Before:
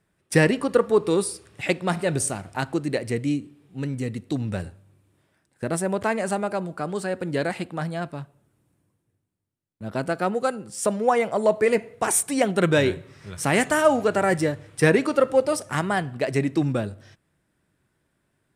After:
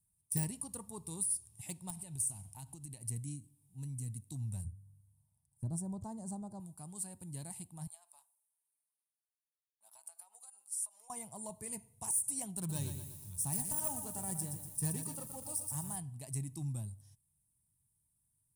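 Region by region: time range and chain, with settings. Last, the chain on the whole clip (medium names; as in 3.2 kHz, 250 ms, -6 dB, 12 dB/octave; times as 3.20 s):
1.90–3.01 s: peaking EQ 2.9 kHz +4.5 dB 0.69 oct + compression 3:1, threshold -28 dBFS
4.64–6.60 s: touch-sensitive phaser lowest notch 340 Hz, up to 2.4 kHz, full sweep at -29 dBFS + tilt shelf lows +7 dB, about 1.1 kHz
7.87–11.10 s: high-pass 720 Hz 24 dB/octave + compression 10:1, threshold -36 dBFS + tape noise reduction on one side only decoder only
12.57–15.96 s: self-modulated delay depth 0.074 ms + band-stop 2.1 kHz, Q 8.6 + bit-crushed delay 120 ms, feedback 55%, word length 7-bit, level -8 dB
whole clip: peaking EQ 9.7 kHz +6 dB 0.21 oct; de-esser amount 50%; FFT filter 120 Hz 0 dB, 500 Hz -28 dB, 920 Hz -10 dB, 1.4 kHz -29 dB, 4.5 kHz -10 dB, 10 kHz +12 dB; trim -8.5 dB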